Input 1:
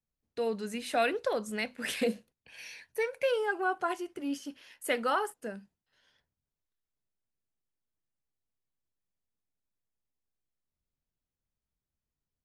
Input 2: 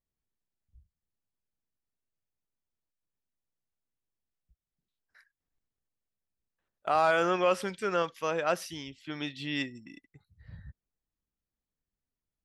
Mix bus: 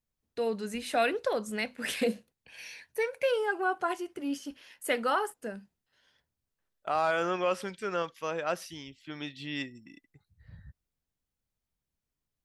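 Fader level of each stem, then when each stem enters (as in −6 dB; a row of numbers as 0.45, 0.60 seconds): +1.0, −3.0 decibels; 0.00, 0.00 seconds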